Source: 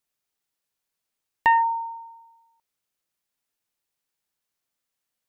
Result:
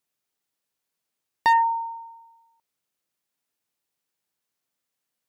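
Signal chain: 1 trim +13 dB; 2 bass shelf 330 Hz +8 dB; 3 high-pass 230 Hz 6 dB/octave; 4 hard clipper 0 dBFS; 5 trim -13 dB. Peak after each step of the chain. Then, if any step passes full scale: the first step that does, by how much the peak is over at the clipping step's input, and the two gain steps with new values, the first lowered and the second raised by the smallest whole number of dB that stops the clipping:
+3.0 dBFS, +5.0 dBFS, +4.5 dBFS, 0.0 dBFS, -13.0 dBFS; step 1, 4.5 dB; step 1 +8 dB, step 5 -8 dB

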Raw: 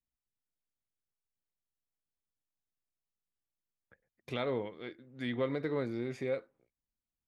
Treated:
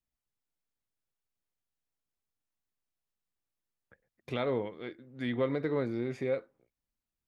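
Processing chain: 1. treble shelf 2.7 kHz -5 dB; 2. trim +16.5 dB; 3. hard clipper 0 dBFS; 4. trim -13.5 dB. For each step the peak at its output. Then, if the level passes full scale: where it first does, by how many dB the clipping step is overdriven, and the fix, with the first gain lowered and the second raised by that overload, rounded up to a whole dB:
-22.0 dBFS, -5.5 dBFS, -5.5 dBFS, -19.0 dBFS; nothing clips

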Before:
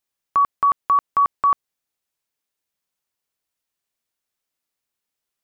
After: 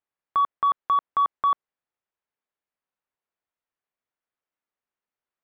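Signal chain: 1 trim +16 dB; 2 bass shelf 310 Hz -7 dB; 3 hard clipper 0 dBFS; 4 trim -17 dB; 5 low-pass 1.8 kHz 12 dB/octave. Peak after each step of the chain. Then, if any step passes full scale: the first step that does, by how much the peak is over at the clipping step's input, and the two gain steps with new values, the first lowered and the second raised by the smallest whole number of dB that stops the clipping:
+4.0 dBFS, +4.0 dBFS, 0.0 dBFS, -17.0 dBFS, -16.5 dBFS; step 1, 4.0 dB; step 1 +12 dB, step 4 -13 dB

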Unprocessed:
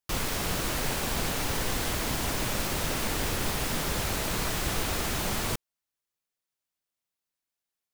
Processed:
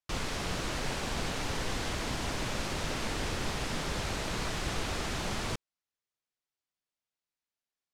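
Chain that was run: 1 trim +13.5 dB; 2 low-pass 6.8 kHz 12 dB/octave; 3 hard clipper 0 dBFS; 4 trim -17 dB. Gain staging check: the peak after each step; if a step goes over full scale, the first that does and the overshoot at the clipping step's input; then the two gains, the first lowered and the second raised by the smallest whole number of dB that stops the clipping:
-2.0 dBFS, -3.0 dBFS, -3.0 dBFS, -20.0 dBFS; nothing clips

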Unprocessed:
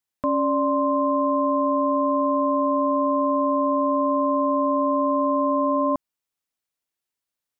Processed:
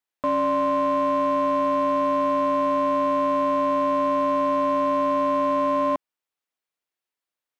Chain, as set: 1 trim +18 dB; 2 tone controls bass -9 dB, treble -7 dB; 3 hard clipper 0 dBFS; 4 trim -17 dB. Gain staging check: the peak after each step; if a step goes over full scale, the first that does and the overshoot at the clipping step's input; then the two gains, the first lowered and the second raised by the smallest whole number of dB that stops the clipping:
+4.5 dBFS, +3.5 dBFS, 0.0 dBFS, -17.0 dBFS; step 1, 3.5 dB; step 1 +14 dB, step 4 -13 dB

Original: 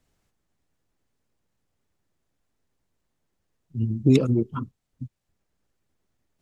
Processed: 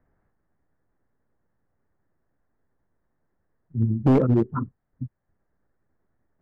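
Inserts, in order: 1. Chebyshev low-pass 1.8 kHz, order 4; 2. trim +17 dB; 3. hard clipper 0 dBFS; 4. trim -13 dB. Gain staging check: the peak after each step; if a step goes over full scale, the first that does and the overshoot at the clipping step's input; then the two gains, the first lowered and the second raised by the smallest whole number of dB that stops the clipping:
-8.0 dBFS, +9.0 dBFS, 0.0 dBFS, -13.0 dBFS; step 2, 9.0 dB; step 2 +8 dB, step 4 -4 dB

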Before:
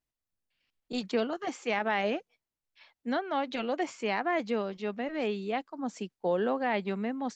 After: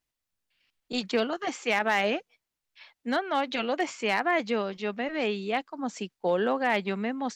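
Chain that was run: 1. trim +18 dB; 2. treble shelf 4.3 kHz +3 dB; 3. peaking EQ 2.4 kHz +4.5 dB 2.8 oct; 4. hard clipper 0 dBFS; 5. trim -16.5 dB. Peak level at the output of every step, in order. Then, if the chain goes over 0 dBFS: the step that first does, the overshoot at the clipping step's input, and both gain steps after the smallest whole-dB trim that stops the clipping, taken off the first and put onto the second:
+0.5 dBFS, +1.0 dBFS, +4.0 dBFS, 0.0 dBFS, -16.5 dBFS; step 1, 4.0 dB; step 1 +14 dB, step 5 -12.5 dB

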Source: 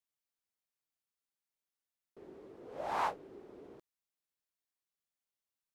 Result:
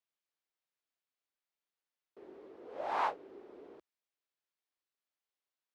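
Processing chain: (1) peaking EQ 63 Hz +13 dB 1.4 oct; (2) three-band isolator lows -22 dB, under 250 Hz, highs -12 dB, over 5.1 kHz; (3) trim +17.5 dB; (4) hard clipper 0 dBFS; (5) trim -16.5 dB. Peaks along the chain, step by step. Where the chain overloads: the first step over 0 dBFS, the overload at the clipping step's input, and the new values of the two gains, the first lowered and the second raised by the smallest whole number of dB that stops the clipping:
-21.5 dBFS, -21.5 dBFS, -4.0 dBFS, -4.0 dBFS, -20.5 dBFS; nothing clips

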